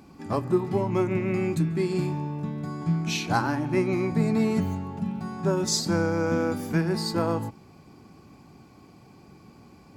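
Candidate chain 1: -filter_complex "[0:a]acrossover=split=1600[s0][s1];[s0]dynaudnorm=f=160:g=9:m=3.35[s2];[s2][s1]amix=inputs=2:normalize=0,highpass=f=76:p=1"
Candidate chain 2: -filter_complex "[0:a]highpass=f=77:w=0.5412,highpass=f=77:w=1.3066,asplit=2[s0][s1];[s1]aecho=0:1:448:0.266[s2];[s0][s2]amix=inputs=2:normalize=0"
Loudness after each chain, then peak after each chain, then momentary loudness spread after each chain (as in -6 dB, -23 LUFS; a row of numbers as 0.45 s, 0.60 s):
-18.5 LUFS, -26.5 LUFS; -2.0 dBFS, -9.5 dBFS; 8 LU, 8 LU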